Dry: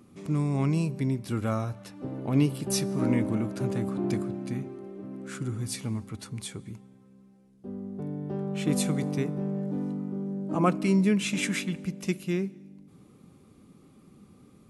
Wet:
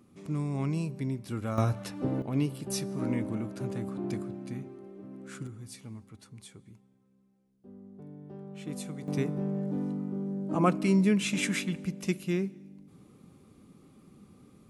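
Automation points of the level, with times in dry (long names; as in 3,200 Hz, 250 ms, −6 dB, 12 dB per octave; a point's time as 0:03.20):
−5 dB
from 0:01.58 +5.5 dB
from 0:02.22 −5.5 dB
from 0:05.47 −12 dB
from 0:09.08 −1 dB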